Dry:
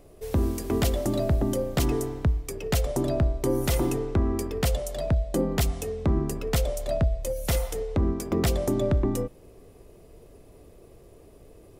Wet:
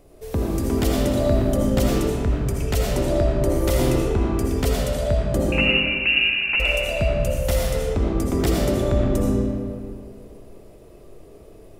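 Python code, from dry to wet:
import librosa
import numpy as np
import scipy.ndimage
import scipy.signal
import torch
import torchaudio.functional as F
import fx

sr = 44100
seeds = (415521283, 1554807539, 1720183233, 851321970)

y = fx.freq_invert(x, sr, carrier_hz=2800, at=(5.52, 6.6))
y = fx.rev_freeverb(y, sr, rt60_s=2.2, hf_ratio=0.65, predelay_ms=40, drr_db=-3.5)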